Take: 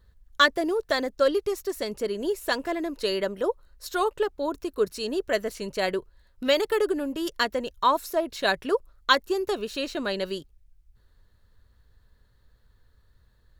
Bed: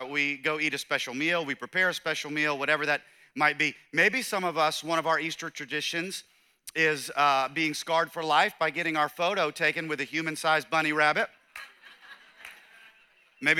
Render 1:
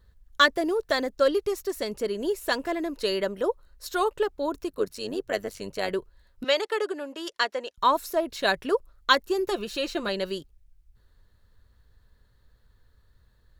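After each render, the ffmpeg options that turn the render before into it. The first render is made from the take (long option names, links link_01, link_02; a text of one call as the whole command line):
ffmpeg -i in.wav -filter_complex "[0:a]asplit=3[link_01][link_02][link_03];[link_01]afade=type=out:start_time=4.68:duration=0.02[link_04];[link_02]tremolo=f=99:d=0.71,afade=type=in:start_time=4.68:duration=0.02,afade=type=out:start_time=5.89:duration=0.02[link_05];[link_03]afade=type=in:start_time=5.89:duration=0.02[link_06];[link_04][link_05][link_06]amix=inputs=3:normalize=0,asettb=1/sr,asplit=3[link_07][link_08][link_09];[link_07]atrim=end=6.444[link_10];[link_08]atrim=start=6.44:end=7.78,asetpts=PTS-STARTPTS,afade=type=in:duration=0.004:curve=qsin,afade=type=out:start_time=1.336:duration=0.004:curve=qsin,highpass=490,lowpass=7600[link_11];[link_09]atrim=start=7.776[link_12];[link_10][link_11]acrossfade=duration=0.004:curve1=hsin:curve2=qsin[link_13];[link_13][link_12]acrossfade=duration=0.004:curve1=qsin:curve2=hsin,asettb=1/sr,asplit=3[link_14][link_15][link_16];[link_14]atrim=end=9.384[link_17];[link_15]atrim=start=9.38:end=10.09,asetpts=PTS-STARTPTS,afade=type=in:duration=0.004:curve=qsin,afade=type=out:start_time=0.706:duration=0.004:curve=qsin,aecho=1:1:5.8:0.52,atrim=end_sample=31311[link_18];[link_16]atrim=start=10.086[link_19];[link_17][link_18]acrossfade=duration=0.004:curve1=hsin:curve2=qsin[link_20];[link_20][link_19]acrossfade=duration=0.004:curve1=qsin:curve2=hsin" out.wav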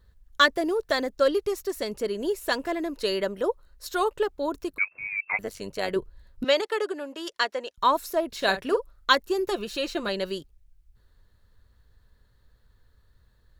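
ffmpeg -i in.wav -filter_complex "[0:a]asettb=1/sr,asplit=3[link_01][link_02][link_03];[link_01]atrim=end=4.784[link_04];[link_02]atrim=start=4.78:end=5.39,asetpts=PTS-STARTPTS,afade=type=in:duration=0.004:curve=qsin,afade=type=out:start_time=0.606:duration=0.004:curve=qsin,lowpass=frequency=2300:width_type=q:width=0.5098,lowpass=frequency=2300:width_type=q:width=0.6013,lowpass=frequency=2300:width_type=q:width=0.9,lowpass=frequency=2300:width_type=q:width=2.563,afreqshift=-2700[link_05];[link_03]atrim=start=5.386[link_06];[link_04][link_05]acrossfade=duration=0.004:curve1=hsin:curve2=qsin[link_07];[link_07][link_06]acrossfade=duration=0.004:curve1=qsin:curve2=hsin,asettb=1/sr,asplit=3[link_08][link_09][link_10];[link_08]atrim=end=5.964[link_11];[link_09]atrim=start=5.96:end=6.61,asetpts=PTS-STARTPTS,afade=type=in:duration=0.004:curve=qsin,afade=type=out:start_time=0.646:duration=0.004:curve=qsin,lowshelf=frequency=350:gain=8[link_12];[link_10]atrim=start=6.606[link_13];[link_11][link_12]acrossfade=duration=0.004:curve1=hsin:curve2=qsin[link_14];[link_14][link_13]acrossfade=duration=0.004:curve1=qsin:curve2=hsin,asettb=1/sr,asplit=3[link_15][link_16][link_17];[link_15]atrim=end=8.284[link_18];[link_16]atrim=start=8.28:end=9.12,asetpts=PTS-STARTPTS,afade=type=in:duration=0.004:curve=qsin,afade=type=out:start_time=0.836:duration=0.004:curve=qsin,asplit=2[link_19][link_20];[link_20]adelay=46,volume=-11dB[link_21];[link_19][link_21]amix=inputs=2:normalize=0,atrim=end_sample=37044[link_22];[link_17]atrim=start=9.116[link_23];[link_18][link_22]acrossfade=duration=0.004:curve1=hsin:curve2=qsin[link_24];[link_24][link_23]acrossfade=duration=0.004:curve1=qsin:curve2=hsin" out.wav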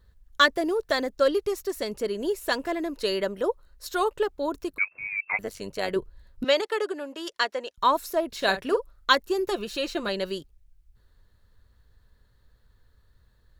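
ffmpeg -i in.wav -af anull out.wav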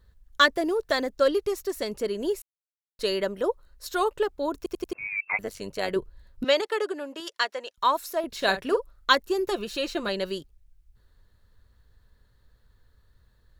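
ffmpeg -i in.wav -filter_complex "[0:a]asettb=1/sr,asplit=3[link_01][link_02][link_03];[link_01]atrim=end=7.204[link_04];[link_02]atrim=start=7.2:end=8.24,asetpts=PTS-STARTPTS,afade=type=in:duration=0.004:curve=qsin,afade=type=out:start_time=1.036:duration=0.004:curve=qsin,lowshelf=frequency=350:gain=-10.5[link_05];[link_03]atrim=start=8.236[link_06];[link_04][link_05]acrossfade=duration=0.004:curve1=hsin:curve2=qsin[link_07];[link_07][link_06]acrossfade=duration=0.004:curve1=qsin:curve2=hsin,asplit=7[link_08][link_09][link_10][link_11][link_12][link_13][link_14];[link_08]atrim=end=2.42,asetpts=PTS-STARTPTS,afade=type=out:start_time=2.416:duration=0.004:curve=hsin[link_15];[link_09]atrim=start=2.42:end=2.99,asetpts=PTS-STARTPTS,volume=0[link_16];[link_10]atrim=start=2.99:end=4.662,asetpts=PTS-STARTPTS,afade=type=in:duration=0.004:curve=hsin[link_17];[link_11]atrim=start=4.568:end=4.662[link_18];[link_12]atrim=start=4.568:end=4.662[link_19];[link_13]atrim=start=4.568:end=4.662[link_20];[link_14]atrim=start=4.928[link_21];[link_15][link_16][link_17]concat=n=3:v=0:a=1[link_22];[link_22][link_18]acrossfade=duration=0.004:curve1=hsin:curve2=hsin[link_23];[link_23][link_19]acrossfade=duration=0.004:curve1=hsin:curve2=hsin[link_24];[link_24][link_20]acrossfade=duration=0.004:curve1=hsin:curve2=hsin[link_25];[link_25][link_21]acrossfade=duration=0.004:curve1=hsin:curve2=hsin" out.wav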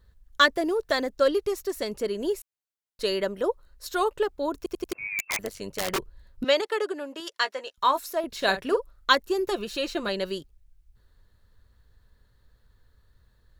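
ffmpeg -i in.wav -filter_complex "[0:a]asplit=3[link_01][link_02][link_03];[link_01]afade=type=out:start_time=4.84:duration=0.02[link_04];[link_02]aeval=exprs='(mod(11.2*val(0)+1,2)-1)/11.2':channel_layout=same,afade=type=in:start_time=4.84:duration=0.02,afade=type=out:start_time=5.97:duration=0.02[link_05];[link_03]afade=type=in:start_time=5.97:duration=0.02[link_06];[link_04][link_05][link_06]amix=inputs=3:normalize=0,asettb=1/sr,asplit=3[link_07][link_08][link_09];[link_07]atrim=end=7.414[link_10];[link_08]atrim=start=7.41:end=8,asetpts=PTS-STARTPTS,afade=type=in:duration=0.004:curve=qsin,afade=type=out:start_time=0.586:duration=0.004:curve=qsin,asplit=2[link_11][link_12];[link_12]adelay=15,volume=-9.5dB[link_13];[link_11][link_13]amix=inputs=2:normalize=0,atrim=end_sample=26019[link_14];[link_09]atrim=start=7.996[link_15];[link_10][link_14]acrossfade=duration=0.004:curve1=hsin:curve2=qsin[link_16];[link_16][link_15]acrossfade=duration=0.004:curve1=qsin:curve2=hsin" out.wav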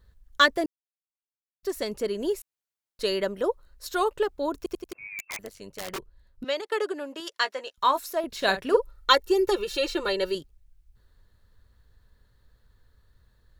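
ffmpeg -i in.wav -filter_complex "[0:a]asettb=1/sr,asplit=3[link_01][link_02][link_03];[link_01]atrim=end=8.744[link_04];[link_02]atrim=start=8.74:end=10.35,asetpts=PTS-STARTPTS,afade=type=in:duration=0.004:curve=qsin,afade=type=out:start_time=1.606:duration=0.004:curve=qsin,aecho=1:1:2.2:0.83,atrim=end_sample=71001[link_05];[link_03]atrim=start=10.346[link_06];[link_04][link_05]acrossfade=duration=0.004:curve1=hsin:curve2=qsin[link_07];[link_07][link_06]acrossfade=duration=0.004:curve1=qsin:curve2=hsin,asplit=5[link_08][link_09][link_10][link_11][link_12];[link_08]atrim=end=0.66,asetpts=PTS-STARTPTS,afade=type=out:start_time=0.656:duration=0.004:curve=hsin[link_13];[link_09]atrim=start=0.66:end=1.63,asetpts=PTS-STARTPTS,volume=0[link_14];[link_10]atrim=start=1.63:end=4.802,asetpts=PTS-STARTPTS,afade=type=in:duration=0.004:curve=hsin[link_15];[link_11]atrim=start=4.798:end=6.722,asetpts=PTS-STARTPTS,volume=-7dB[link_16];[link_12]atrim=start=6.718[link_17];[link_13][link_14][link_15]concat=n=3:v=0:a=1[link_18];[link_18][link_16]acrossfade=duration=0.004:curve1=hsin:curve2=hsin[link_19];[link_19][link_17]acrossfade=duration=0.004:curve1=hsin:curve2=hsin" out.wav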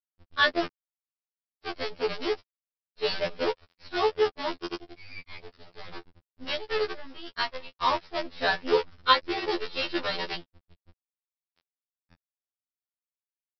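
ffmpeg -i in.wav -af "aresample=11025,acrusher=bits=5:dc=4:mix=0:aa=0.000001,aresample=44100,afftfilt=real='re*2*eq(mod(b,4),0)':imag='im*2*eq(mod(b,4),0)':win_size=2048:overlap=0.75" out.wav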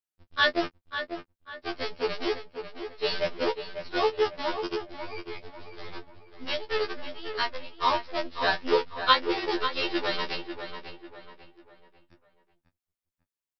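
ffmpeg -i in.wav -filter_complex "[0:a]asplit=2[link_01][link_02];[link_02]adelay=20,volume=-12dB[link_03];[link_01][link_03]amix=inputs=2:normalize=0,asplit=2[link_04][link_05];[link_05]adelay=545,lowpass=frequency=3100:poles=1,volume=-8.5dB,asplit=2[link_06][link_07];[link_07]adelay=545,lowpass=frequency=3100:poles=1,volume=0.39,asplit=2[link_08][link_09];[link_09]adelay=545,lowpass=frequency=3100:poles=1,volume=0.39,asplit=2[link_10][link_11];[link_11]adelay=545,lowpass=frequency=3100:poles=1,volume=0.39[link_12];[link_04][link_06][link_08][link_10][link_12]amix=inputs=5:normalize=0" out.wav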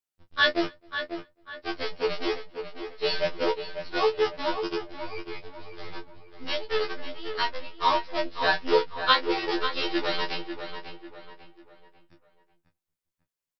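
ffmpeg -i in.wav -filter_complex "[0:a]asplit=2[link_01][link_02];[link_02]adelay=18,volume=-5.5dB[link_03];[link_01][link_03]amix=inputs=2:normalize=0,asplit=2[link_04][link_05];[link_05]adelay=262.4,volume=-30dB,highshelf=frequency=4000:gain=-5.9[link_06];[link_04][link_06]amix=inputs=2:normalize=0" out.wav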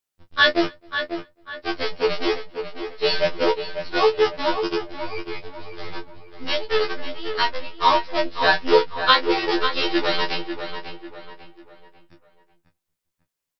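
ffmpeg -i in.wav -af "volume=6dB,alimiter=limit=-3dB:level=0:latency=1" out.wav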